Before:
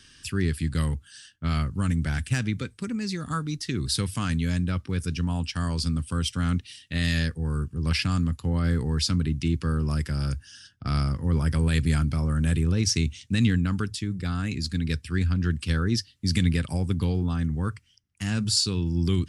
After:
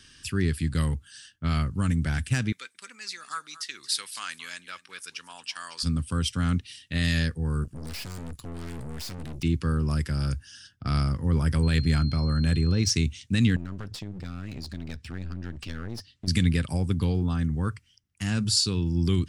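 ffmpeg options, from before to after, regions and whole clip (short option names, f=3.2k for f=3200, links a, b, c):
-filter_complex "[0:a]asettb=1/sr,asplit=3[a][b][c];[a]atrim=end=2.524[d];[b]atrim=start=2.52:end=5.83,asetpts=PTS-STARTPTS,afade=t=in:d=0.004:c=qsin,afade=t=out:st=3.306:d=0.004:c=qsin,highpass=1.2k,aecho=1:1:226:0.15,atrim=end_sample=145971[e];[c]atrim=start=5.826[f];[d][e]acrossfade=d=0.004:c1=hsin:c2=qsin[g];[g][f]acrossfade=d=0.004:c1=qsin:c2=hsin,asettb=1/sr,asplit=3[h][i][j];[h]atrim=end=7.644[k];[i]atrim=start=7.64:end=9.43,asetpts=PTS-STARTPTS,afade=t=in:d=0.004:c=qsin,afade=t=out:st=1.786:d=0.004:c=qsin,highshelf=f=2.8k:g=9.5,aeval=exprs='(tanh(63.1*val(0)+0.7)-tanh(0.7))/63.1':c=same[l];[j]atrim=start=9.426[m];[k][l]acrossfade=d=0.004:c1=hsin:c2=qsin[n];[n][m]acrossfade=d=0.004:c1=qsin:c2=hsin,asettb=1/sr,asplit=3[o][p][q];[o]atrim=end=11.634[r];[p]atrim=start=11.63:end=12.9,asetpts=PTS-STARTPTS,afade=t=in:d=0.004:c=qsin,afade=t=out:st=1.266:d=0.004:c=qsin,adynamicsmooth=sensitivity=4:basefreq=6.4k,aeval=exprs='val(0)+0.01*sin(2*PI*4200*n/s)':c=same[s];[q]atrim=start=12.896[t];[r][s]acrossfade=d=0.004:c1=hsin:c2=qsin[u];[u][t]acrossfade=d=0.004:c1=qsin:c2=hsin,asettb=1/sr,asplit=3[v][w][x];[v]atrim=end=13.564[y];[w]atrim=start=13.56:end=16.28,asetpts=PTS-STARTPTS,afade=t=in:d=0.004:c=qsin,afade=t=out:st=2.716:d=0.004:c=qsin,lowpass=6.3k,aeval=exprs='clip(val(0),-1,0.0141)':c=same,acompressor=threshold=-34dB:ratio=2.5:attack=3.2:release=140:knee=1:detection=peak[z];[x]atrim=start=16.276[aa];[y][z]acrossfade=d=0.004:c1=hsin:c2=qsin[ab];[ab][aa]acrossfade=d=0.004:c1=qsin:c2=hsin"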